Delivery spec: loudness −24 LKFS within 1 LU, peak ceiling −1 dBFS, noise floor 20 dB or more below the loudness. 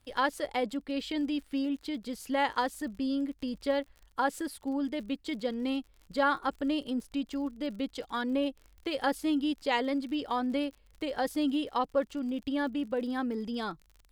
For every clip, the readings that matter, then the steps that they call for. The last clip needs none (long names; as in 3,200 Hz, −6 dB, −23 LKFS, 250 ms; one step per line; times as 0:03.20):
crackle rate 47 per second; integrated loudness −32.5 LKFS; sample peak −15.5 dBFS; target loudness −24.0 LKFS
→ click removal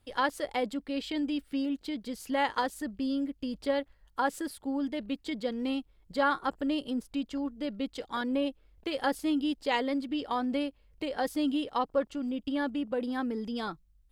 crackle rate 0.57 per second; integrated loudness −32.5 LKFS; sample peak −15.5 dBFS; target loudness −24.0 LKFS
→ level +8.5 dB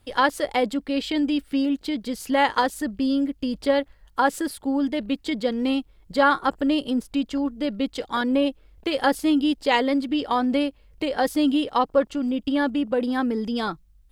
integrated loudness −24.0 LKFS; sample peak −7.0 dBFS; background noise floor −56 dBFS